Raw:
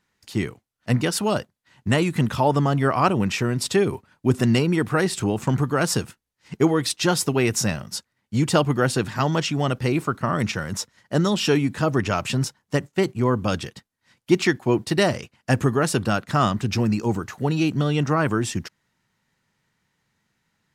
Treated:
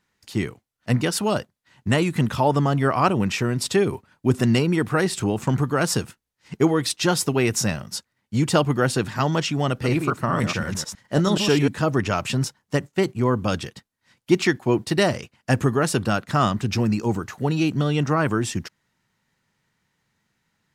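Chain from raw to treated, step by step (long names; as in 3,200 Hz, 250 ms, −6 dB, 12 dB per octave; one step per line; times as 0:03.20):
0:09.68–0:11.68: delay that plays each chunk backwards 106 ms, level −5.5 dB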